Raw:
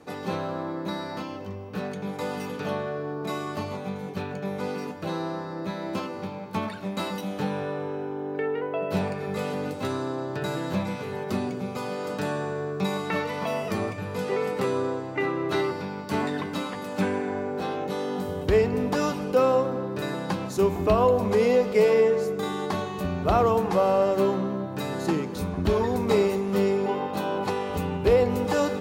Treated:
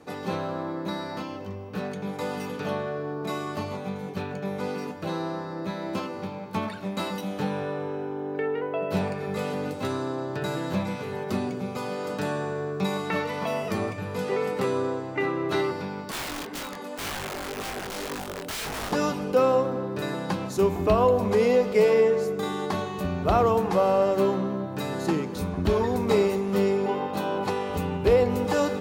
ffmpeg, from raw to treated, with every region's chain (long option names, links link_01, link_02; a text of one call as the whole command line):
ffmpeg -i in.wav -filter_complex "[0:a]asettb=1/sr,asplit=3[link_01][link_02][link_03];[link_01]atrim=end=16.114[link_04];[link_02]atrim=start=16.11:end=18.92,asetpts=PTS-STARTPTS,afade=type=in:duration=0.004:curve=qsin,afade=type=out:start_time=2.806:duration=0.004:curve=qsin,highpass=200,aeval=exprs='(mod(16.8*val(0)+1,2)-1)/16.8':channel_layout=same,flanger=delay=19:depth=5.1:speed=1.9[link_05];[link_03]atrim=start=18.916[link_06];[link_04][link_05]acrossfade=duration=0.004:curve1=hsin:curve2=qsin[link_07];[link_07][link_06]acrossfade=duration=0.004:curve1=qsin:curve2=hsin" out.wav